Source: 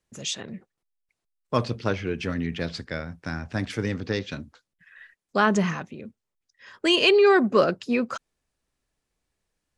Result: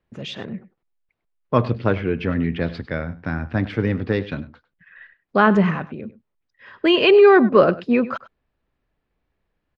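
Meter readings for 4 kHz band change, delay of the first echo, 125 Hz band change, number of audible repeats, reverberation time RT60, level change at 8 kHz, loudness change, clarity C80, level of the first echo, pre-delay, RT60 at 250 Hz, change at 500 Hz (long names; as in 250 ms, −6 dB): −0.5 dB, 100 ms, +7.0 dB, 1, no reverb audible, below −15 dB, +5.5 dB, no reverb audible, −17.5 dB, no reverb audible, no reverb audible, +6.0 dB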